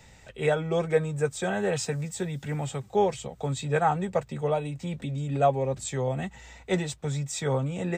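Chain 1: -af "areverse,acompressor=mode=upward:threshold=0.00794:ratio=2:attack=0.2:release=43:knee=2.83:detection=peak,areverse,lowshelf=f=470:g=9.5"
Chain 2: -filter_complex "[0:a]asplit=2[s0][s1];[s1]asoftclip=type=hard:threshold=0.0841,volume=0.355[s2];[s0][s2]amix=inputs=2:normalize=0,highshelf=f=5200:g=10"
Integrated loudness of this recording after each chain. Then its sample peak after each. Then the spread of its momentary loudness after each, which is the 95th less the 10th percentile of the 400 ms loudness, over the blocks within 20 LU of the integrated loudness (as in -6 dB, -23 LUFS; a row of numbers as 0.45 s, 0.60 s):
-23.0 LUFS, -25.5 LUFS; -6.5 dBFS, -9.5 dBFS; 6 LU, 7 LU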